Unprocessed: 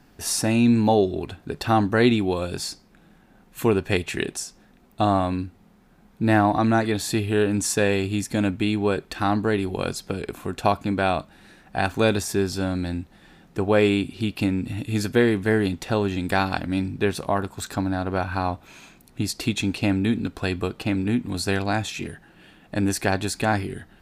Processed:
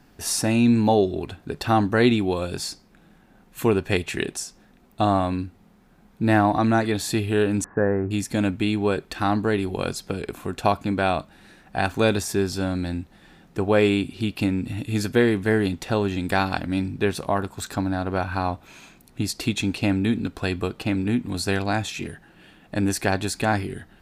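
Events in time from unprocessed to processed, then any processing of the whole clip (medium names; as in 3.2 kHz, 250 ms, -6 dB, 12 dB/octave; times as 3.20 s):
7.64–8.11 s: steep low-pass 1.7 kHz 48 dB/octave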